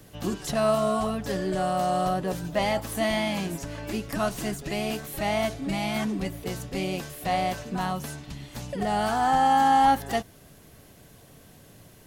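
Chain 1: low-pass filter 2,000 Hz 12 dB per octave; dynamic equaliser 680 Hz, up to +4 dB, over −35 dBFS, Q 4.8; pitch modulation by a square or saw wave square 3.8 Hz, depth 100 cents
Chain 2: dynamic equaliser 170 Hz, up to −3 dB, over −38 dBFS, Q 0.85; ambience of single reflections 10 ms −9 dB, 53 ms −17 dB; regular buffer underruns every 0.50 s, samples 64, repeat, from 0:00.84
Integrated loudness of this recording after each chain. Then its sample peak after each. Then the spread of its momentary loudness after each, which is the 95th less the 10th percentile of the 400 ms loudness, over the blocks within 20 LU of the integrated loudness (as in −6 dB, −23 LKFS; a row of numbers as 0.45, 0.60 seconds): −25.5, −26.5 LKFS; −10.5, −10.5 dBFS; 14, 14 LU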